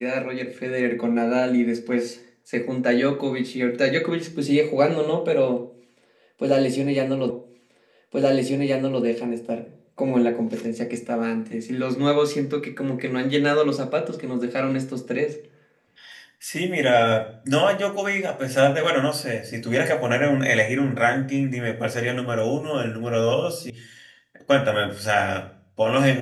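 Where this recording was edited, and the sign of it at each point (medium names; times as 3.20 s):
7.30 s: repeat of the last 1.73 s
23.70 s: sound stops dead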